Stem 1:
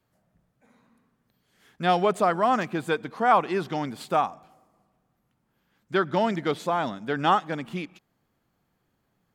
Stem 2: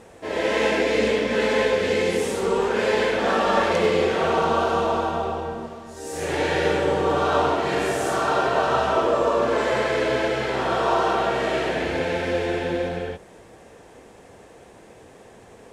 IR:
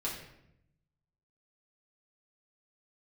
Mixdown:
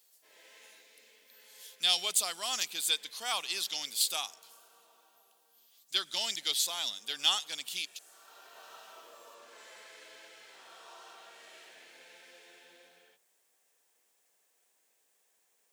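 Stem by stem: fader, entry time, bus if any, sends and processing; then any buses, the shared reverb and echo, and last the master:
+1.0 dB, 0.00 s, no send, resonant high shelf 2400 Hz +14 dB, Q 1.5
-14.5 dB, 0.00 s, no send, requantised 10-bit, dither none; auto duck -10 dB, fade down 0.90 s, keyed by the first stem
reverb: off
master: HPF 130 Hz 24 dB/oct; differentiator

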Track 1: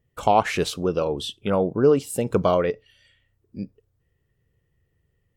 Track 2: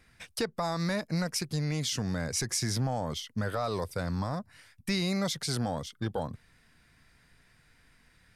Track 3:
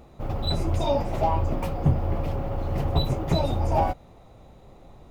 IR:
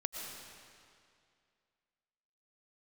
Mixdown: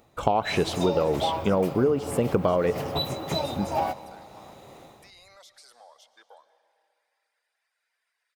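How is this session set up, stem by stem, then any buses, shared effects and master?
+2.0 dB, 0.00 s, send -16.5 dB, high shelf 4000 Hz -9.5 dB
-14.0 dB, 0.15 s, send -8 dB, HPF 590 Hz 24 dB/oct; reverb removal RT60 1 s; limiter -30.5 dBFS, peak gain reduction 11 dB
-7.0 dB, 0.00 s, send -17.5 dB, HPF 120 Hz 12 dB/oct; tilt +2 dB/oct; AGC gain up to 13.5 dB; auto duck -7 dB, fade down 0.25 s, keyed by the first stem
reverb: on, RT60 2.3 s, pre-delay 75 ms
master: compressor 12:1, threshold -18 dBFS, peak gain reduction 10 dB

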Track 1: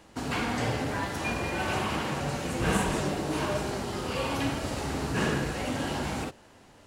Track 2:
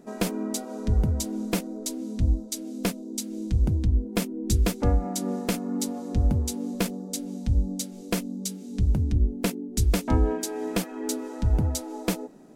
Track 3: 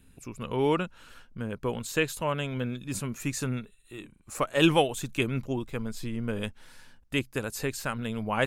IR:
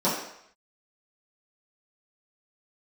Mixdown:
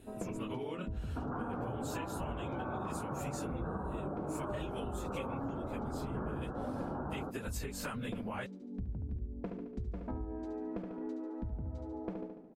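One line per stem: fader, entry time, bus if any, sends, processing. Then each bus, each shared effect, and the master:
+2.5 dB, 1.00 s, no send, no echo send, elliptic low-pass 1400 Hz, stop band 40 dB
-8.0 dB, 0.00 s, no send, echo send -7 dB, LPF 1100 Hz 12 dB/oct; compressor 2.5:1, threshold -24 dBFS, peak gain reduction 6 dB
+0.5 dB, 0.00 s, no send, no echo send, phase scrambler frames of 50 ms; compressor, threshold -32 dBFS, peak gain reduction 16.5 dB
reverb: off
echo: feedback echo 72 ms, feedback 51%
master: compressor 6:1, threshold -36 dBFS, peak gain reduction 16 dB

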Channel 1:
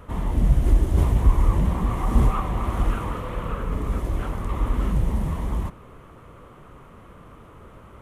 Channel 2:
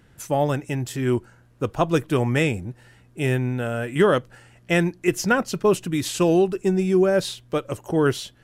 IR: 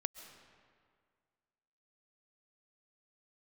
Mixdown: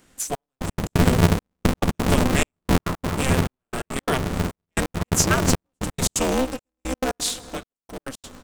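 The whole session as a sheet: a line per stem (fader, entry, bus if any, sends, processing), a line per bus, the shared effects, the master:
-2.5 dB, 0.50 s, no send, echo send -13 dB, octaver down 1 oct, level -5 dB; bell 120 Hz +11 dB 0.21 oct
7.23 s -8 dB -> 7.87 s -16.5 dB, 0.00 s, send -5 dB, no echo send, high shelf 2700 Hz +10.5 dB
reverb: on, RT60 2.0 s, pre-delay 95 ms
echo: echo 0.15 s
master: bell 7500 Hz +7.5 dB 0.77 oct; step gate "xxxx...x.x.x" 173 bpm -60 dB; polarity switched at an audio rate 130 Hz

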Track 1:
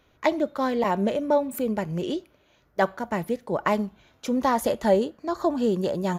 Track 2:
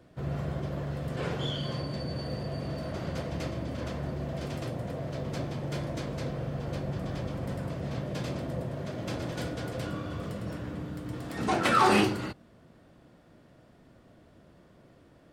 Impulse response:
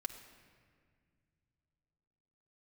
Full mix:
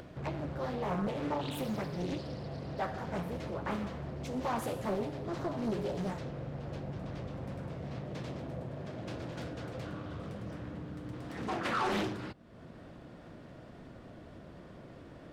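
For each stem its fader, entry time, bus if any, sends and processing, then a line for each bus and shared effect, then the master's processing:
-2.5 dB, 0.00 s, no send, AGC gain up to 9 dB; resonator 59 Hz, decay 0.92 s, harmonics odd, mix 80%; ensemble effect
-6.5 dB, 0.00 s, no send, high shelf 7400 Hz -9.5 dB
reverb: off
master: soft clip -26 dBFS, distortion -16 dB; upward compressor, threshold -37 dBFS; Doppler distortion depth 0.65 ms

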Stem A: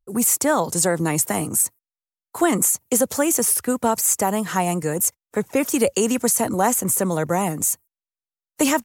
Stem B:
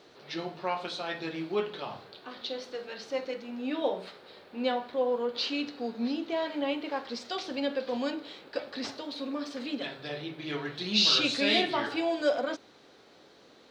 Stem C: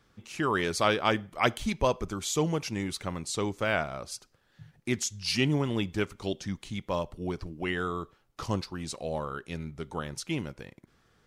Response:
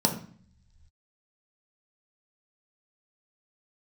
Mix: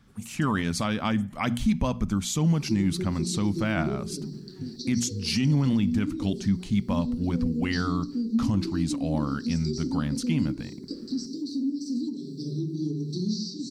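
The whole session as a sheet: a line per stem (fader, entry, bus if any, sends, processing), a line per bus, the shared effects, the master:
-15.0 dB, 0.00 s, no send, band-pass 3100 Hz, Q 0.77; auto duck -23 dB, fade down 1.65 s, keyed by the third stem
0.0 dB, 2.35 s, send -6 dB, Chebyshev band-stop 390–4600 Hz, order 5; bell 4700 Hz +4.5 dB 2 oct; compressor 10:1, threshold -40 dBFS, peak gain reduction 19.5 dB
+1.5 dB, 0.00 s, no send, resonant low shelf 300 Hz +7.5 dB, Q 3; notches 60/120/180/240 Hz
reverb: on, RT60 0.50 s, pre-delay 3 ms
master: limiter -15.5 dBFS, peak gain reduction 10 dB

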